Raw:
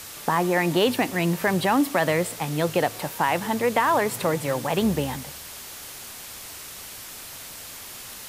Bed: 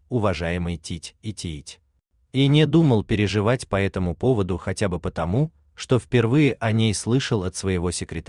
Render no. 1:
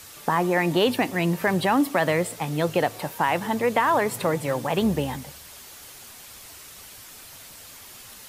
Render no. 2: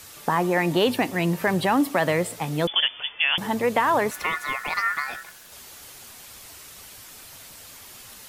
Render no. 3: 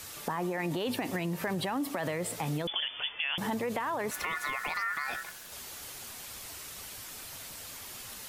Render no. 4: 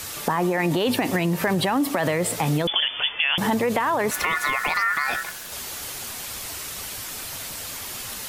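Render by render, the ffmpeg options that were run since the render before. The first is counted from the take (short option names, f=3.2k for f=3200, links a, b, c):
-af "afftdn=nr=6:nf=-40"
-filter_complex "[0:a]asettb=1/sr,asplit=3[a][b][c];[a]atrim=end=2.674[d];[b]atrim=start=2.67:end=3.38,asetpts=PTS-STARTPTS,afade=t=in:d=0.004:c=qsin,afade=t=out:st=0.706:d=0.004:c=qsin,lowpass=f=3.1k:t=q:w=0.5098,lowpass=f=3.1k:t=q:w=0.6013,lowpass=f=3.1k:t=q:w=0.9,lowpass=f=3.1k:t=q:w=2.563,afreqshift=-3600[e];[c]atrim=start=3.376[f];[d][e]acrossfade=d=0.004:c1=hsin:c2=qsin[g];[g][f]acrossfade=d=0.004:c1=qsin:c2=hsin,asettb=1/sr,asplit=3[h][i][j];[h]atrim=end=4.114[k];[i]atrim=start=4.11:end=5.52,asetpts=PTS-STARTPTS,afade=t=in:d=0.004:c=qsin,afade=t=out:st=1.406:d=0.004:c=qsin,aeval=exprs='val(0)*sin(2*PI*1600*n/s)':c=same[l];[j]atrim=start=5.516[m];[k][l]acrossfade=d=0.004:c1=hsin:c2=qsin[n];[n][m]acrossfade=d=0.004:c1=qsin:c2=hsin"
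-af "alimiter=limit=-19dB:level=0:latency=1:release=30,acompressor=threshold=-29dB:ratio=6"
-af "volume=10.5dB"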